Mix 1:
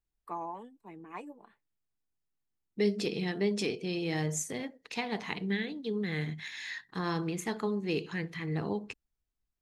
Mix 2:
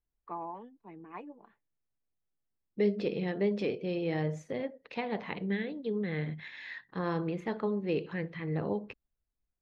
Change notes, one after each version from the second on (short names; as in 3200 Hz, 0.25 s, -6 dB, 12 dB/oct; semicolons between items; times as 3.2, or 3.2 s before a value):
second voice: add bell 550 Hz +11.5 dB 0.29 oct; master: add air absorption 310 m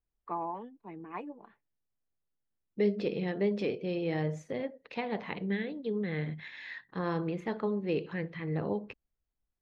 first voice +4.0 dB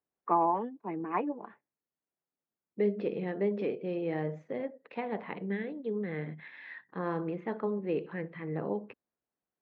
first voice +9.5 dB; master: add BPF 180–2000 Hz